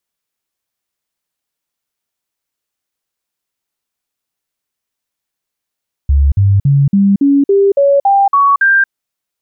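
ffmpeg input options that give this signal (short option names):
-f lavfi -i "aevalsrc='0.501*clip(min(mod(t,0.28),0.23-mod(t,0.28))/0.005,0,1)*sin(2*PI*70.1*pow(2,floor(t/0.28)/2)*mod(t,0.28))':d=2.8:s=44100"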